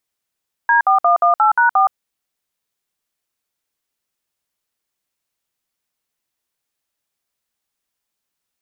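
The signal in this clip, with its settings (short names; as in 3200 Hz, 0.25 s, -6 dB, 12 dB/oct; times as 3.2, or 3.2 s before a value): DTMF "D4118#4", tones 0.119 s, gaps 58 ms, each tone -12.5 dBFS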